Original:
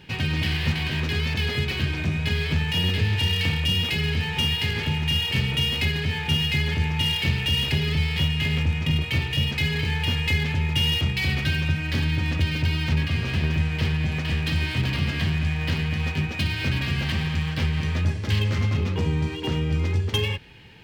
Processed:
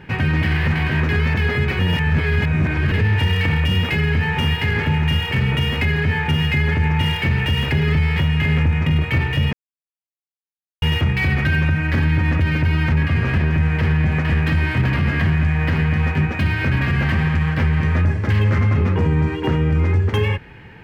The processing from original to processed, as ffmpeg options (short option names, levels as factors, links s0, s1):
-filter_complex "[0:a]asplit=5[s0][s1][s2][s3][s4];[s0]atrim=end=1.792[s5];[s1]atrim=start=1.788:end=2.922,asetpts=PTS-STARTPTS,areverse[s6];[s2]atrim=start=2.918:end=9.53,asetpts=PTS-STARTPTS,afade=t=out:st=6.608:d=0.004:c=hsin[s7];[s3]atrim=start=9.53:end=10.82,asetpts=PTS-STARTPTS,volume=0[s8];[s4]atrim=start=10.82,asetpts=PTS-STARTPTS,afade=t=in:d=0.004:c=hsin[s9];[s5][s6]acrossfade=d=0.004:c1=hsin:c2=hsin[s10];[s7][s8][s9]concat=n=3:v=0:a=1[s11];[s10][s11]acrossfade=d=0.004:c1=hsin:c2=hsin,highshelf=f=2500:t=q:w=1.5:g=-11.5,alimiter=limit=0.133:level=0:latency=1:release=27,volume=2.51"